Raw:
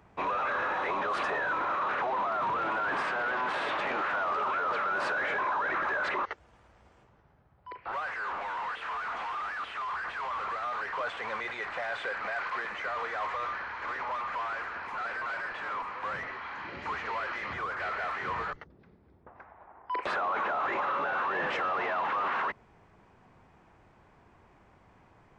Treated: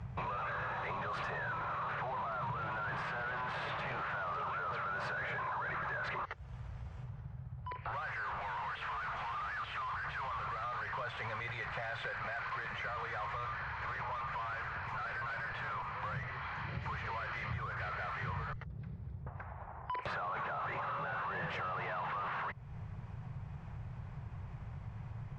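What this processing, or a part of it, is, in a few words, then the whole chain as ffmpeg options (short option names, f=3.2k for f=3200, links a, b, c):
jukebox: -af "lowpass=7.1k,lowshelf=f=190:t=q:w=3:g=12.5,acompressor=threshold=-46dB:ratio=3,volume=5dB"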